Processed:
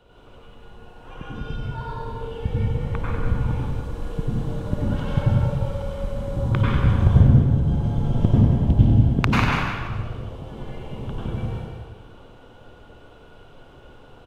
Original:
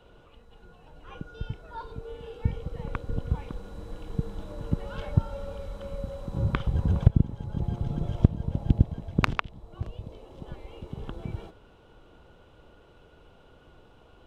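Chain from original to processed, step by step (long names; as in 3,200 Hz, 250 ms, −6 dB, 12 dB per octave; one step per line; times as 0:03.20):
on a send: single-tap delay 194 ms −7.5 dB
on the sum: dense smooth reverb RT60 1.4 s, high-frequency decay 0.8×, pre-delay 80 ms, DRR −6.5 dB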